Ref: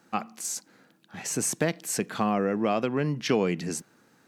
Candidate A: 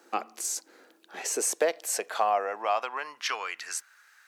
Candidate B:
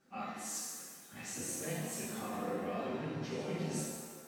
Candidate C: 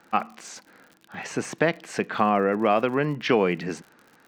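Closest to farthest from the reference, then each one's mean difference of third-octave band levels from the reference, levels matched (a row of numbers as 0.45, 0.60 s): C, A, B; 4.0, 8.5, 12.5 dB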